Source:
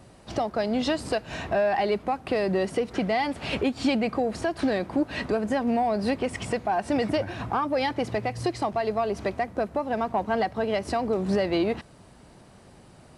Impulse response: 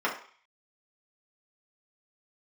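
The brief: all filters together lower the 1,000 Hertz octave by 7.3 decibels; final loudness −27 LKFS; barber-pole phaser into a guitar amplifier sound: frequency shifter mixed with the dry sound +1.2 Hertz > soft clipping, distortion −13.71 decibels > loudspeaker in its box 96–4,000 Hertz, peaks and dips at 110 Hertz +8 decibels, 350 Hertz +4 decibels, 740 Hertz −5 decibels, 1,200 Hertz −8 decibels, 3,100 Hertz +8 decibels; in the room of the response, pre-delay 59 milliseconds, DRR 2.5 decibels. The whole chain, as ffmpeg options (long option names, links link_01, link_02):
-filter_complex "[0:a]equalizer=frequency=1000:width_type=o:gain=-4.5,asplit=2[link_01][link_02];[1:a]atrim=start_sample=2205,adelay=59[link_03];[link_02][link_03]afir=irnorm=-1:irlink=0,volume=-14dB[link_04];[link_01][link_04]amix=inputs=2:normalize=0,asplit=2[link_05][link_06];[link_06]afreqshift=1.2[link_07];[link_05][link_07]amix=inputs=2:normalize=1,asoftclip=threshold=-24.5dB,highpass=96,equalizer=frequency=110:width_type=q:width=4:gain=8,equalizer=frequency=350:width_type=q:width=4:gain=4,equalizer=frequency=740:width_type=q:width=4:gain=-5,equalizer=frequency=1200:width_type=q:width=4:gain=-8,equalizer=frequency=3100:width_type=q:width=4:gain=8,lowpass=frequency=4000:width=0.5412,lowpass=frequency=4000:width=1.3066,volume=4.5dB"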